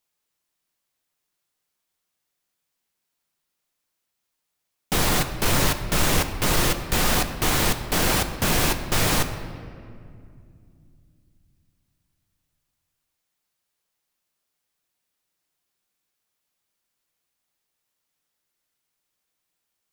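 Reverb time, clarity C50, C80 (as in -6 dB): 2.3 s, 9.5 dB, 10.5 dB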